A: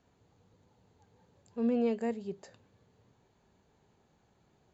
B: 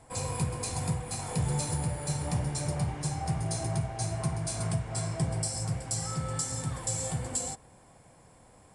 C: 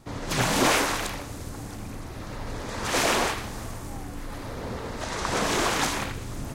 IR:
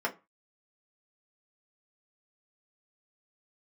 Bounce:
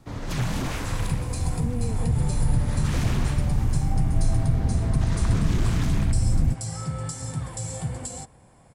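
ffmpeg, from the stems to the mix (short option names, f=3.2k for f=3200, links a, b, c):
-filter_complex "[0:a]volume=-4dB[a];[1:a]adelay=700,volume=0.5dB[b];[2:a]asubboost=boost=6.5:cutoff=230,asoftclip=type=hard:threshold=-15.5dB,volume=-2.5dB[c];[a][b][c]amix=inputs=3:normalize=0,bass=f=250:g=4,treble=f=4k:g=-2,acrossover=split=190[d][e];[e]acompressor=threshold=-31dB:ratio=6[f];[d][f]amix=inputs=2:normalize=0"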